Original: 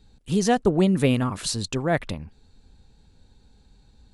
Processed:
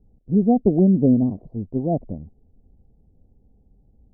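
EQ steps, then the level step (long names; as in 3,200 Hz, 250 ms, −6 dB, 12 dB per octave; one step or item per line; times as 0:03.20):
elliptic low-pass filter 720 Hz, stop band 50 dB
dynamic equaliser 240 Hz, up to +8 dB, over −35 dBFS, Q 1.5
high-frequency loss of the air 350 metres
0.0 dB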